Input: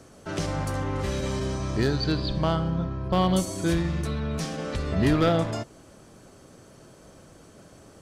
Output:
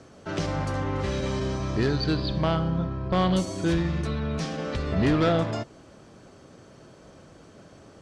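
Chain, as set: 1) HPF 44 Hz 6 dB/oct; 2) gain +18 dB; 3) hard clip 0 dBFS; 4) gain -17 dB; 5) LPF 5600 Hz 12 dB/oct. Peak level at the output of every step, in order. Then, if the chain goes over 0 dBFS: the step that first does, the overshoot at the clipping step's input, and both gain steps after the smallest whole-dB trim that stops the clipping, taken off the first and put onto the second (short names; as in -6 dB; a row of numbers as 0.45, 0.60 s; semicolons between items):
-12.5, +5.5, 0.0, -17.0, -16.5 dBFS; step 2, 5.5 dB; step 2 +12 dB, step 4 -11 dB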